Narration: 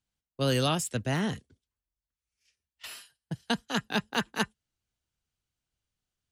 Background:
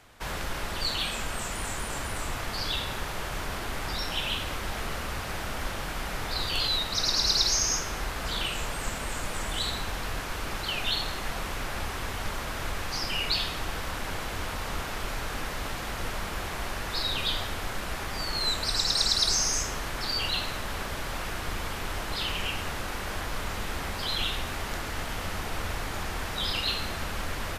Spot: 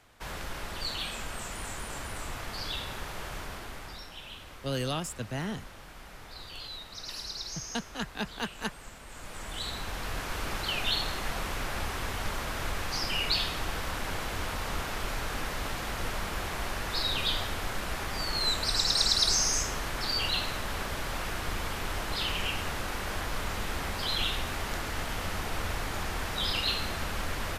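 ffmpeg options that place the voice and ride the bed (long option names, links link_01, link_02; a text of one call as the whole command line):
ffmpeg -i stem1.wav -i stem2.wav -filter_complex "[0:a]adelay=4250,volume=-5.5dB[link_01];[1:a]volume=9dB,afade=type=out:start_time=3.31:duration=0.8:silence=0.334965,afade=type=in:start_time=9.06:duration=1.33:silence=0.199526[link_02];[link_01][link_02]amix=inputs=2:normalize=0" out.wav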